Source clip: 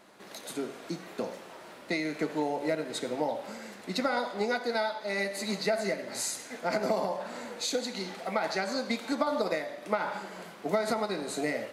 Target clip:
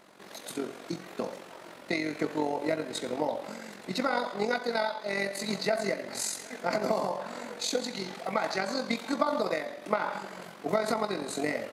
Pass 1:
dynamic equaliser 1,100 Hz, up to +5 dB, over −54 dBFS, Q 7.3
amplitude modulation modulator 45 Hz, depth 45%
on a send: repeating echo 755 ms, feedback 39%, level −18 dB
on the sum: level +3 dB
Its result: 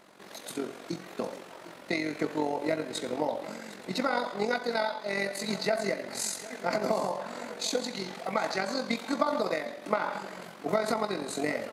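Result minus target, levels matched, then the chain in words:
echo-to-direct +7 dB
dynamic equaliser 1,100 Hz, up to +5 dB, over −54 dBFS, Q 7.3
amplitude modulation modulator 45 Hz, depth 45%
on a send: repeating echo 755 ms, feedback 39%, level −25 dB
on the sum: level +3 dB

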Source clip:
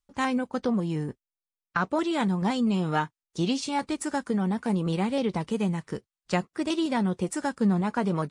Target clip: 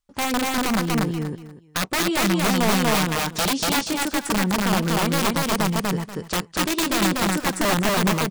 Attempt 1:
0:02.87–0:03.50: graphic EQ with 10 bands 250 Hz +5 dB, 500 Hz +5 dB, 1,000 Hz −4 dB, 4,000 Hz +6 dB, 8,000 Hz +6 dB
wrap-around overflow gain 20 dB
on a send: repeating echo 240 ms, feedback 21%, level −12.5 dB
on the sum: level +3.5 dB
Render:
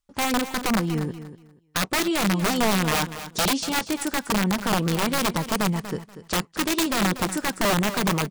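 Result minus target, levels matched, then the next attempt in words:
echo-to-direct −11.5 dB
0:02.87–0:03.50: graphic EQ with 10 bands 250 Hz +5 dB, 500 Hz +5 dB, 1,000 Hz −4 dB, 4,000 Hz +6 dB, 8,000 Hz +6 dB
wrap-around overflow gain 20 dB
on a send: repeating echo 240 ms, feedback 21%, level −1 dB
on the sum: level +3.5 dB

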